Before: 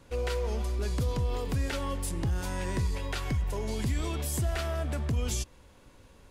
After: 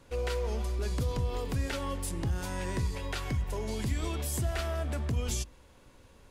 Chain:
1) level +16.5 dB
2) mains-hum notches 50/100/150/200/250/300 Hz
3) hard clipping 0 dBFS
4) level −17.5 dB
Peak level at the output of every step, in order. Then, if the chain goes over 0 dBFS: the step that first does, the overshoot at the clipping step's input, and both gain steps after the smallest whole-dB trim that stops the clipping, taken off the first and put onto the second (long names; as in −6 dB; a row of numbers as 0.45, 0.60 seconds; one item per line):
−4.0, −2.5, −2.5, −20.0 dBFS
no step passes full scale